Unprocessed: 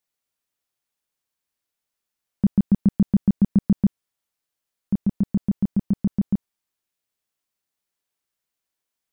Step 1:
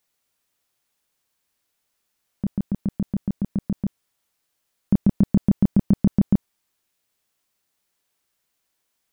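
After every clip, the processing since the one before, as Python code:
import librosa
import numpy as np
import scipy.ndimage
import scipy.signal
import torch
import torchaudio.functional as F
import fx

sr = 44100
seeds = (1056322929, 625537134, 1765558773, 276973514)

y = fx.over_compress(x, sr, threshold_db=-20.0, ratio=-0.5)
y = y * 10.0 ** (4.0 / 20.0)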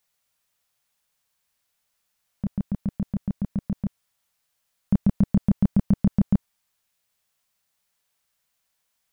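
y = fx.peak_eq(x, sr, hz=330.0, db=-13.5, octaves=0.6)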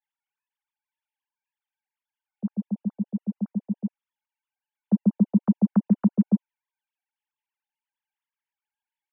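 y = fx.sine_speech(x, sr)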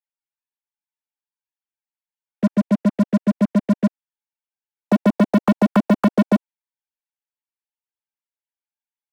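y = fx.leveller(x, sr, passes=5)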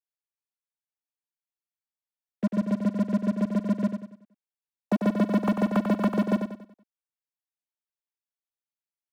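y = fx.echo_feedback(x, sr, ms=94, feedback_pct=39, wet_db=-7.0)
y = y * 10.0 ** (-8.0 / 20.0)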